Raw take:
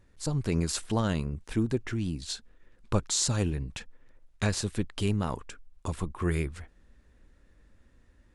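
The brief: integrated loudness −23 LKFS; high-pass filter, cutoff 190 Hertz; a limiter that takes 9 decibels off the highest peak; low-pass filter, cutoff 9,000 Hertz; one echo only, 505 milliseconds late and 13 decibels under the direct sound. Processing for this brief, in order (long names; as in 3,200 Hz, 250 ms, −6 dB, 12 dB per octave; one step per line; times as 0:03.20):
high-pass filter 190 Hz
low-pass filter 9,000 Hz
brickwall limiter −20.5 dBFS
single-tap delay 505 ms −13 dB
level +12.5 dB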